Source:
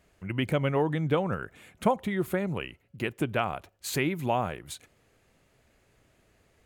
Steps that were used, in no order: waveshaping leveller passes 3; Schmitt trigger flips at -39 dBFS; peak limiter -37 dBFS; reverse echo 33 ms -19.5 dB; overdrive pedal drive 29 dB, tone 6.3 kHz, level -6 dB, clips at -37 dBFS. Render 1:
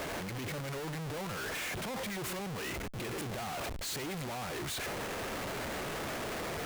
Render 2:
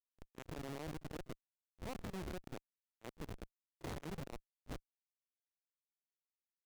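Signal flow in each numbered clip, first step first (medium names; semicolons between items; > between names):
overdrive pedal > reverse echo > waveshaping leveller > Schmitt trigger > peak limiter; peak limiter > Schmitt trigger > overdrive pedal > waveshaping leveller > reverse echo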